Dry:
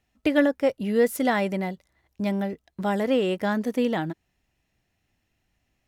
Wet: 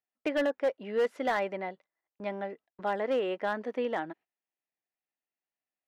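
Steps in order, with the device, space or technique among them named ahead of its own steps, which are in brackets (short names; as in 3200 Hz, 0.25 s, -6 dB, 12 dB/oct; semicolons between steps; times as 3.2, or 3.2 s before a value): walkie-talkie (BPF 440–2300 Hz; hard clip -19.5 dBFS, distortion -14 dB; gate -51 dBFS, range -16 dB); gain -2.5 dB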